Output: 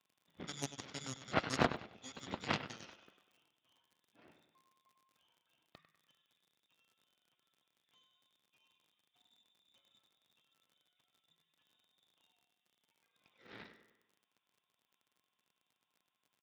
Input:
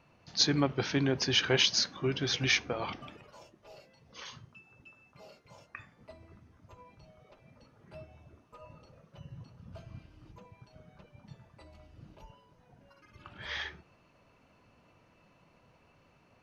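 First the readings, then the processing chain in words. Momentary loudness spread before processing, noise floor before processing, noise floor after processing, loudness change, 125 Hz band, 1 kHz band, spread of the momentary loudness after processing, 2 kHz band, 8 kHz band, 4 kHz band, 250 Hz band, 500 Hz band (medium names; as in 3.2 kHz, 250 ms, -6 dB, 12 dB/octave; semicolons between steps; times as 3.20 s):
21 LU, -66 dBFS, under -85 dBFS, -11.0 dB, -12.0 dB, -1.5 dB, 20 LU, -10.5 dB, no reading, -17.5 dB, -10.5 dB, -9.5 dB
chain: frequency inversion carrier 3.7 kHz; distance through air 430 m; feedback delay 98 ms, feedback 50%, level -7.5 dB; Chebyshev shaper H 3 -9 dB, 6 -21 dB, 8 -37 dB, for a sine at -13.5 dBFS; overload inside the chain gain 23 dB; crackle 55 per s -65 dBFS; high-pass 180 Hz 12 dB/octave; bass shelf 300 Hz +11.5 dB; trim +6.5 dB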